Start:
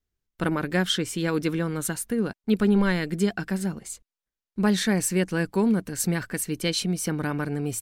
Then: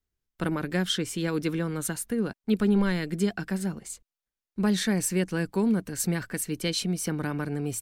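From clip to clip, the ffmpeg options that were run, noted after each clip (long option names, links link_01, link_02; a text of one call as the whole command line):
ffmpeg -i in.wav -filter_complex "[0:a]acrossover=split=400|3000[link_01][link_02][link_03];[link_02]acompressor=threshold=-30dB:ratio=2[link_04];[link_01][link_04][link_03]amix=inputs=3:normalize=0,volume=-2dB" out.wav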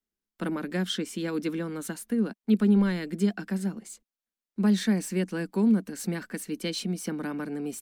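ffmpeg -i in.wav -filter_complex "[0:a]lowshelf=frequency=160:width_type=q:width=3:gain=-9,acrossover=split=330|5400[link_01][link_02][link_03];[link_03]asoftclip=type=tanh:threshold=-33dB[link_04];[link_01][link_02][link_04]amix=inputs=3:normalize=0,volume=-3.5dB" out.wav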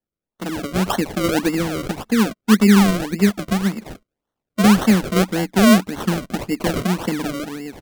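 ffmpeg -i in.wav -af "acrusher=samples=35:mix=1:aa=0.000001:lfo=1:lforange=35:lforate=1.8,dynaudnorm=framelen=100:gausssize=13:maxgain=10.5dB" out.wav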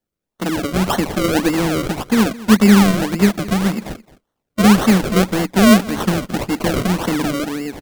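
ffmpeg -i in.wav -filter_complex "[0:a]asplit=2[link_01][link_02];[link_02]aeval=exprs='(mod(8.41*val(0)+1,2)-1)/8.41':channel_layout=same,volume=-5.5dB[link_03];[link_01][link_03]amix=inputs=2:normalize=0,aecho=1:1:216:0.112,volume=2dB" out.wav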